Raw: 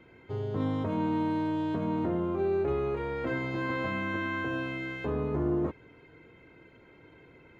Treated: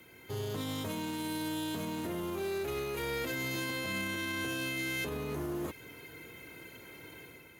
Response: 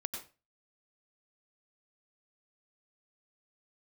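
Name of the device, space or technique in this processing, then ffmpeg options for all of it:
FM broadcast chain: -filter_complex "[0:a]highpass=55,dynaudnorm=f=100:g=7:m=6dB,acrossover=split=700|1900[a][b][c];[a]acompressor=threshold=-30dB:ratio=4[d];[b]acompressor=threshold=-45dB:ratio=4[e];[c]acompressor=threshold=-38dB:ratio=4[f];[d][e][f]amix=inputs=3:normalize=0,aemphasis=mode=production:type=75fm,alimiter=level_in=2dB:limit=-24dB:level=0:latency=1:release=59,volume=-2dB,asoftclip=type=hard:threshold=-29.5dB,lowpass=f=15k:w=0.5412,lowpass=f=15k:w=1.3066,aemphasis=mode=production:type=75fm,volume=-1.5dB"

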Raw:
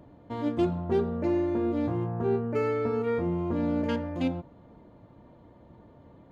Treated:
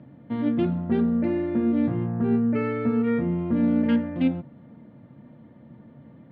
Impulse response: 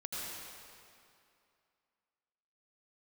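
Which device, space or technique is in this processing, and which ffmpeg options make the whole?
guitar cabinet: -af "highpass=110,equalizer=f=140:t=q:w=4:g=10,equalizer=f=230:t=q:w=4:g=10,equalizer=f=400:t=q:w=4:g=-6,equalizer=f=710:t=q:w=4:g=-4,equalizer=f=1k:t=q:w=4:g=-7,equalizer=f=1.9k:t=q:w=4:g=4,lowpass=f=3.5k:w=0.5412,lowpass=f=3.5k:w=1.3066,volume=2dB"

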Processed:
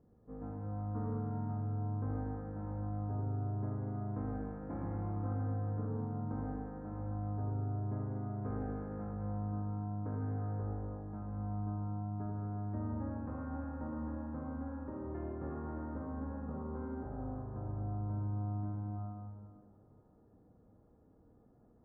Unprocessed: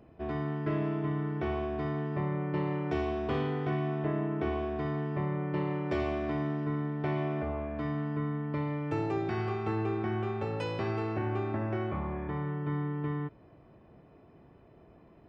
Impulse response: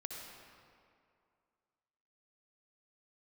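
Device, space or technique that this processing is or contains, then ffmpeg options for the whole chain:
slowed and reverbed: -filter_complex "[0:a]lowpass=f=1.9k:w=0.5412,lowpass=f=1.9k:w=1.3066,asetrate=30870,aresample=44100[a];[1:a]atrim=start_sample=2205[b];[a][b]afir=irnorm=-1:irlink=0,volume=-6dB"

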